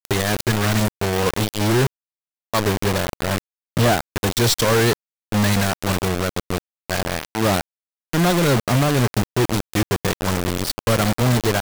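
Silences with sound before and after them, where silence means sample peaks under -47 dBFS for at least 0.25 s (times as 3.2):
1.87–2.54
3.38–3.77
4.93–5.32
6.58–6.9
7.61–8.13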